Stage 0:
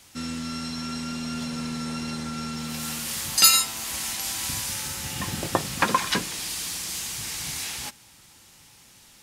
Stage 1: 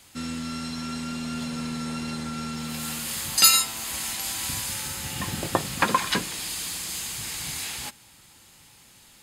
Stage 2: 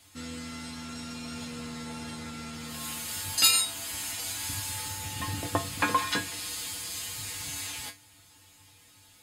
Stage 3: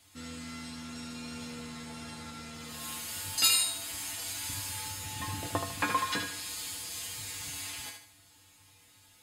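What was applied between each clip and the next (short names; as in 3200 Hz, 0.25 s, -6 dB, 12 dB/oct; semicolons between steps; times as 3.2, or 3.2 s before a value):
notch 5700 Hz, Q 7.5
resonator 97 Hz, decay 0.2 s, harmonics odd, mix 90%; gain +5.5 dB
thinning echo 75 ms, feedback 38%, level -6 dB; gain -4 dB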